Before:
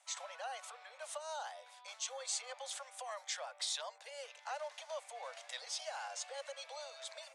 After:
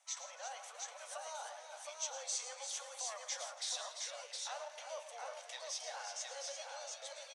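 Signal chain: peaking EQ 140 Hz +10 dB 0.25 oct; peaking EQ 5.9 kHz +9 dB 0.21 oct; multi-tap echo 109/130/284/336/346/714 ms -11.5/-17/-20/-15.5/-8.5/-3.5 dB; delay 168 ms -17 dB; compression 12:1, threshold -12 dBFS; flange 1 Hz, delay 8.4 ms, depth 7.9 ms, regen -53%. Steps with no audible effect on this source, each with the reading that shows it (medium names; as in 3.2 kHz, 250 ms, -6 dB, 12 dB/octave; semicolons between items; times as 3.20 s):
peaking EQ 140 Hz: input has nothing below 430 Hz; compression, threshold -12 dBFS: peak at its input -22.5 dBFS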